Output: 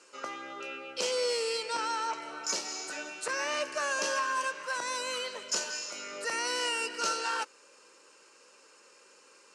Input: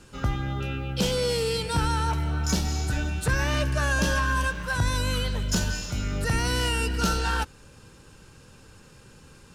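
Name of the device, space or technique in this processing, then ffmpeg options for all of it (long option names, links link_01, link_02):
phone speaker on a table: -filter_complex "[0:a]highpass=frequency=430:width=0.5412,highpass=frequency=430:width=1.3066,equalizer=frequency=440:width_type=q:width=4:gain=-3,equalizer=frequency=770:width_type=q:width=4:gain=-9,equalizer=frequency=1600:width_type=q:width=4:gain=-6,equalizer=frequency=3500:width_type=q:width=4:gain=-10,lowpass=frequency=8500:width=0.5412,lowpass=frequency=8500:width=1.3066,asettb=1/sr,asplit=3[link_01][link_02][link_03];[link_01]atrim=end=1.634[link_04];[link_02]atrim=start=1.63:end=2.22,asetpts=PTS-STARTPTS,afade=type=in:duration=0.004:curve=qsin,afade=type=out:start_time=0.586:duration=0.004:curve=qsin,lowpass=frequency=7800:width=0.5412,lowpass=frequency=7800:width=1.3066[link_05];[link_03]atrim=start=2.216[link_06];[link_04][link_05]acrossfade=duration=0.004:curve1=hsin:curve2=qsin[link_07];[link_07][link_06]acrossfade=duration=0.004:curve1=qsin:curve2=hsin"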